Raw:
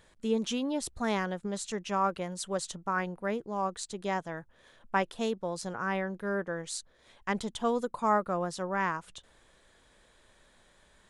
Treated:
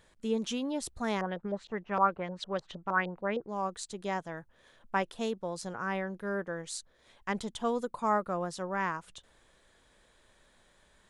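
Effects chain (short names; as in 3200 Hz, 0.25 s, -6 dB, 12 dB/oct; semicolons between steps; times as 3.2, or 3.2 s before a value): 1.21–3.49 LFO low-pass saw up 6.5 Hz 510–4400 Hz; gain -2 dB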